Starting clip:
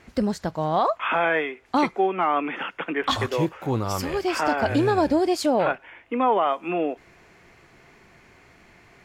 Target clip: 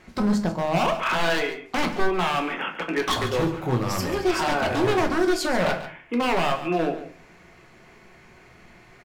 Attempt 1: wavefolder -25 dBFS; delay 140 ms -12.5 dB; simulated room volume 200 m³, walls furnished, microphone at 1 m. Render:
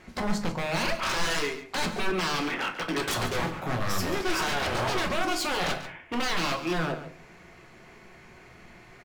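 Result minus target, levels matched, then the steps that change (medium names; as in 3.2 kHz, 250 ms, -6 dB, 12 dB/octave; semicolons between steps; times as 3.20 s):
wavefolder: distortion +16 dB
change: wavefolder -19 dBFS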